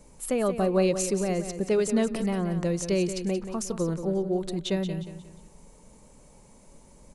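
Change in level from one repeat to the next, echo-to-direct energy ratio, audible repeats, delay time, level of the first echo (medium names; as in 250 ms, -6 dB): -9.0 dB, -9.5 dB, 3, 179 ms, -10.0 dB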